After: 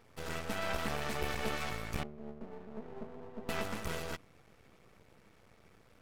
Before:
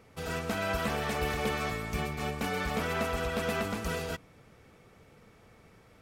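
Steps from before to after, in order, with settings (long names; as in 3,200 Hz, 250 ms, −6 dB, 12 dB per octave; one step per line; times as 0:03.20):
0:02.03–0:03.49: pair of resonant band-passes 300 Hz, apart 0.74 octaves
half-wave rectification
level −1 dB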